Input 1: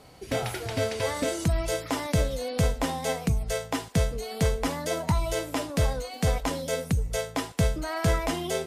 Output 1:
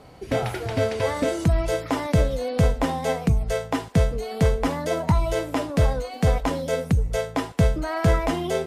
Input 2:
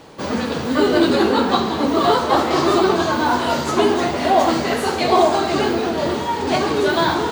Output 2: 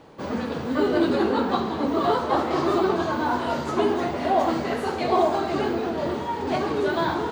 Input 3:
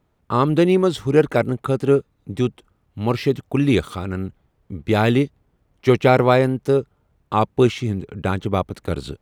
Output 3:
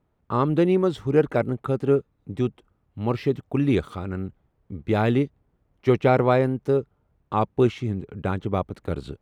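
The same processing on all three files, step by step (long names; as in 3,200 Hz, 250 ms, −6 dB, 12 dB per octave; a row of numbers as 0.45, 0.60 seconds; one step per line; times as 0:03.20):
high-shelf EQ 3,000 Hz −10 dB
loudness normalisation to −24 LKFS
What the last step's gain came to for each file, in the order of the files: +5.0, −5.5, −3.5 decibels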